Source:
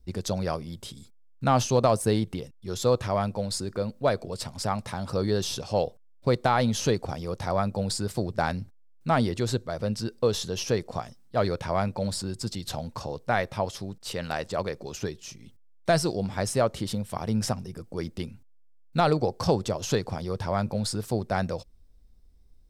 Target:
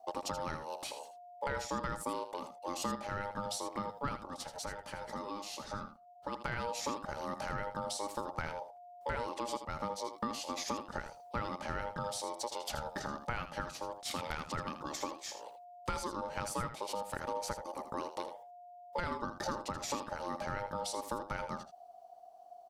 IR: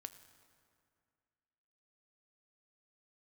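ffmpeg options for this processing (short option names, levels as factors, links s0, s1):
-filter_complex "[0:a]acompressor=threshold=0.0178:ratio=5,aeval=exprs='val(0)*sin(2*PI*710*n/s)':c=same,asplit=3[s0][s1][s2];[s0]afade=t=out:st=4.25:d=0.02[s3];[s1]flanger=delay=2.6:depth=3.5:regen=-57:speed=1.9:shape=triangular,afade=t=in:st=4.25:d=0.02,afade=t=out:st=6.31:d=0.02[s4];[s2]afade=t=in:st=6.31:d=0.02[s5];[s3][s4][s5]amix=inputs=3:normalize=0,aecho=1:1:80:0.299,volume=1.26"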